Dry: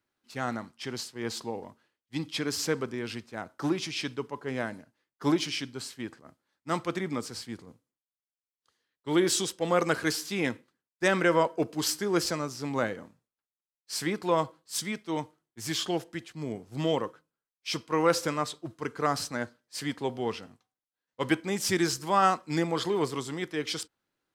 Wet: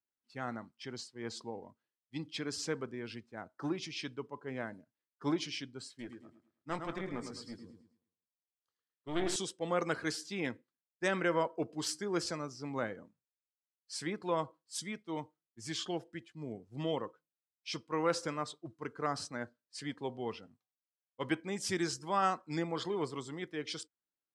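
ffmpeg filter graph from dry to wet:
-filter_complex "[0:a]asettb=1/sr,asplit=3[s0][s1][s2];[s0]atrim=end=5.884[s3];[s1]atrim=start=5.88:end=9.36,asetpts=PTS-STARTPTS,afade=t=in:d=0.004:c=qsin,afade=t=out:st=3.476:d=0.004:c=qsin,aecho=1:1:107|214|321|428|535:0.422|0.186|0.0816|0.0359|0.0158,atrim=end_sample=153468,aeval=exprs='clip(val(0),-1,0.02)':c=same,asplit=2[s4][s5];[s5]adelay=21,volume=0.224[s6];[s4][s6]amix=inputs=2:normalize=0,atrim=end_sample=153468[s7];[s2]atrim=start=9.356[s8];[s3][s7]acrossfade=d=0.004:c1=hsin:c2=qsin[s9];[s9][s8]acrossfade=d=0.004:c1=qsin:c2=hsin,lowpass=f=11000:w=0.5412,lowpass=f=11000:w=1.3066,afftdn=nr=12:nf=-46,volume=0.422"

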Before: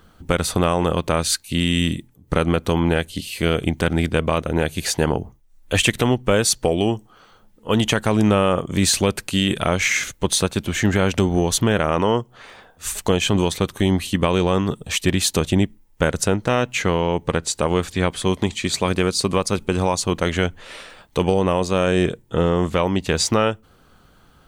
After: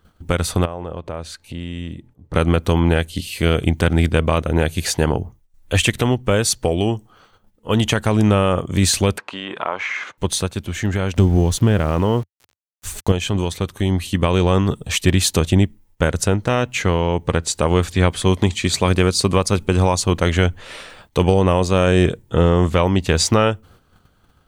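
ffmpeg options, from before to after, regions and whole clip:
-filter_complex "[0:a]asettb=1/sr,asplit=3[s0][s1][s2];[s0]atrim=end=0.654[s3];[s1]atrim=start=0.65:end=2.34,asetpts=PTS-STARTPTS,afade=t=in:d=0.004:c=qsin,afade=t=out:st=1.686:d=0.004:c=qsin,lowpass=f=2400:p=1,acompressor=threshold=0.01:ratio=2:attack=3.2:release=140:knee=1:detection=peak,equalizer=f=620:t=o:w=1.6:g=6[s4];[s2]atrim=start=2.336[s5];[s3][s4]acrossfade=d=0.004:c1=hsin:c2=qsin[s6];[s6][s5]acrossfade=d=0.004:c1=qsin:c2=hsin,asettb=1/sr,asplit=3[s7][s8][s9];[s7]atrim=end=9.184[s10];[s8]atrim=start=9.18:end=10.18,asetpts=PTS-STARTPTS,afade=t=in:d=0.004:c=qsin,afade=t=out:st=0.996:d=0.004:c=qsin,equalizer=f=990:t=o:w=0.88:g=13,acompressor=threshold=0.0631:ratio=2:attack=3.2:release=140:knee=1:detection=peak,highpass=370,lowpass=2700[s11];[s9]atrim=start=10.176[s12];[s10][s11]acrossfade=d=0.004:c1=hsin:c2=qsin[s13];[s13][s12]acrossfade=d=0.004:c1=qsin:c2=hsin,asettb=1/sr,asplit=3[s14][s15][s16];[s14]atrim=end=11.164[s17];[s15]atrim=start=11.16:end=13.12,asetpts=PTS-STARTPTS,afade=t=in:d=0.004:c=qsin,afade=t=out:st=1.956:d=0.004:c=qsin,lowshelf=f=380:g=8.5,aeval=exprs='val(0)*gte(abs(val(0)),0.0266)':c=same[s18];[s16]atrim=start=13.116[s19];[s17][s18]acrossfade=d=0.004:c1=hsin:c2=qsin[s20];[s20][s19]acrossfade=d=0.004:c1=qsin:c2=hsin,agate=range=0.355:threshold=0.00316:ratio=16:detection=peak,equalizer=f=89:t=o:w=0.84:g=6.5,dynaudnorm=f=660:g=3:m=3.76,volume=0.891"

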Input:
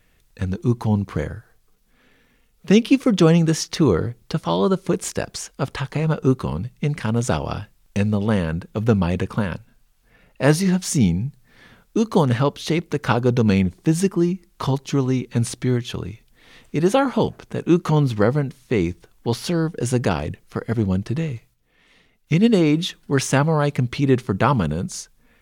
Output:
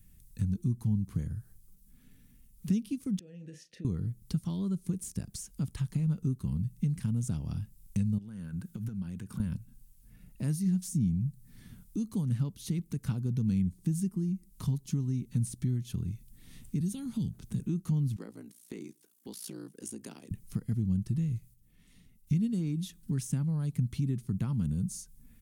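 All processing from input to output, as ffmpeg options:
-filter_complex "[0:a]asettb=1/sr,asplit=3[s0][s1][s2];[s0]atrim=end=3.194[s3];[s1]atrim=start=3.19:end=3.85,asetpts=PTS-STARTPTS,afade=t=in:d=0.004:c=qsin,afade=t=out:st=0.656:d=0.004:c=qsin,asplit=2[s4][s5];[s5]adelay=34,volume=0.316[s6];[s4][s6]amix=inputs=2:normalize=0,atrim=end_sample=29106,acompressor=threshold=0.158:ratio=6:attack=3.2:release=140:knee=1:detection=peak,asplit=3[s7][s8][s9];[s7]bandpass=f=530:t=q:w=8,volume=1[s10];[s8]bandpass=f=1840:t=q:w=8,volume=0.501[s11];[s9]bandpass=f=2480:t=q:w=8,volume=0.355[s12];[s10][s11][s12]amix=inputs=3:normalize=0[s13];[s2]atrim=start=3.846[s14];[s3][s13]acrossfade=d=0.004:c1=hsin:c2=qsin[s15];[s15][s14]acrossfade=d=0.004:c1=qsin:c2=hsin,asettb=1/sr,asplit=3[s16][s17][s18];[s16]atrim=end=8.184[s19];[s17]atrim=start=8.18:end=9.4,asetpts=PTS-STARTPTS,afade=t=in:d=0.004:c=qsin,afade=t=out:st=1.216:d=0.004:c=qsin,highpass=f=190:p=1,equalizer=f=1500:w=5.3:g=10.5,acompressor=threshold=0.0251:ratio=10:attack=3.2:release=140:knee=1:detection=peak[s20];[s18]atrim=start=9.396[s21];[s19][s20]acrossfade=d=0.004:c1=hsin:c2=qsin[s22];[s22][s21]acrossfade=d=0.004:c1=qsin:c2=hsin,asettb=1/sr,asplit=3[s23][s24][s25];[s23]atrim=end=16.804[s26];[s24]atrim=start=16.8:end=17.6,asetpts=PTS-STARTPTS,afade=t=in:d=0.004:c=qsin,afade=t=out:st=0.796:d=0.004:c=qsin,equalizer=f=3700:t=o:w=0.35:g=4.5,acrossover=split=260|3000[s27][s28][s29];[s28]acompressor=threshold=0.0178:ratio=3:attack=3.2:release=140:knee=2.83:detection=peak[s30];[s27][s30][s29]amix=inputs=3:normalize=0[s31];[s25]atrim=start=17.596[s32];[s26][s31]acrossfade=d=0.004:c1=hsin:c2=qsin[s33];[s33][s32]acrossfade=d=0.004:c1=qsin:c2=hsin,asettb=1/sr,asplit=3[s34][s35][s36];[s34]atrim=end=18.164[s37];[s35]atrim=start=18.16:end=20.31,asetpts=PTS-STARTPTS,afade=t=in:d=0.004:c=qsin,afade=t=out:st=2.146:d=0.004:c=qsin,highpass=f=300:w=0.5412,highpass=f=300:w=1.3066,aeval=exprs='val(0)*sin(2*PI*29*n/s)':c=same[s38];[s36]atrim=start=20.306[s39];[s37][s38]acrossfade=d=0.004:c1=hsin:c2=qsin[s40];[s40][s39]acrossfade=d=0.004:c1=qsin:c2=hsin,acompressor=threshold=0.0178:ratio=2.5,firequalizer=gain_entry='entry(190,0);entry(350,-14);entry(510,-23);entry(9300,1)':delay=0.05:min_phase=1,acrossover=split=460[s41][s42];[s42]acompressor=threshold=0.00708:ratio=6[s43];[s41][s43]amix=inputs=2:normalize=0,volume=1.58"

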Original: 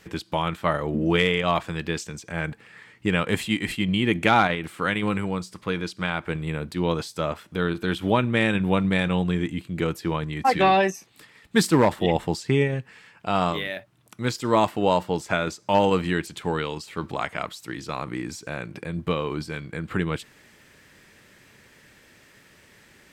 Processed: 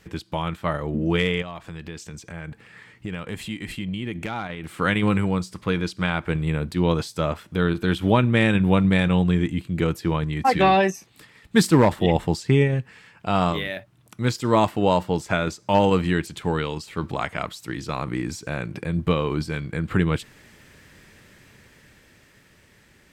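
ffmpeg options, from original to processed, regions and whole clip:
-filter_complex "[0:a]asettb=1/sr,asplit=3[s0][s1][s2];[s0]atrim=end=1.424[s3];[s1]atrim=start=1.42:end=4.72,asetpts=PTS-STARTPTS,afade=t=in:d=0.004:c=qsin,afade=t=out:st=3.296:d=0.004:c=qsin,acompressor=threshold=0.0158:ratio=2.5:attack=3.2:release=140:knee=1:detection=peak,volume=11.2,asoftclip=hard,volume=0.0891[s4];[s2]atrim=start=4.716[s5];[s3][s4]acrossfade=d=0.004:c1=hsin:c2=qsin[s6];[s6][s5]acrossfade=d=0.004:c1=qsin:c2=hsin,lowshelf=f=150:g=8.5,dynaudnorm=f=210:g=17:m=2,volume=0.708"

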